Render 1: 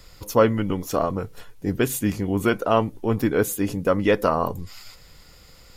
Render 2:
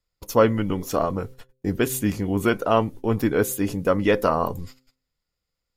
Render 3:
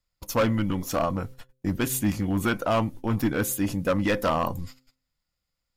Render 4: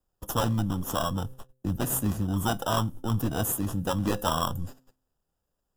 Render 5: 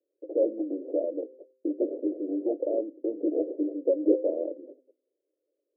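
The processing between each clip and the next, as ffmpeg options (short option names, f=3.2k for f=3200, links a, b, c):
-af "agate=range=-33dB:threshold=-36dB:ratio=16:detection=peak,bandreject=f=129.8:t=h:w=4,bandreject=f=259.6:t=h:w=4,bandreject=f=389.4:t=h:w=4,bandreject=f=519.2:t=h:w=4"
-af "equalizer=f=420:w=4.8:g=-13,asoftclip=type=hard:threshold=-17.5dB"
-filter_complex "[0:a]acrossover=split=180|830|6600[a][b][c][d];[b]acompressor=threshold=-36dB:ratio=6[e];[c]acrusher=samples=20:mix=1:aa=0.000001[f];[a][e][f][d]amix=inputs=4:normalize=0,volume=1.5dB"
-af "asuperpass=centerf=420:order=12:qfactor=1.4,volume=9dB"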